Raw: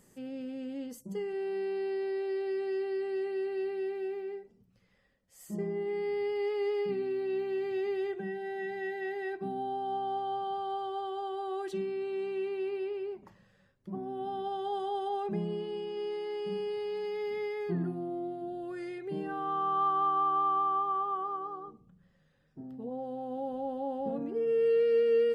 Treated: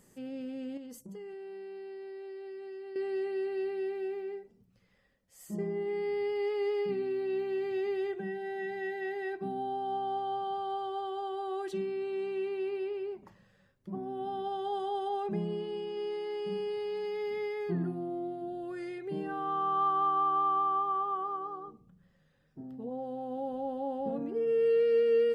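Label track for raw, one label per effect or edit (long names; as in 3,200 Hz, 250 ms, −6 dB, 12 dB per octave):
0.770000	2.960000	downward compressor, threshold −42 dBFS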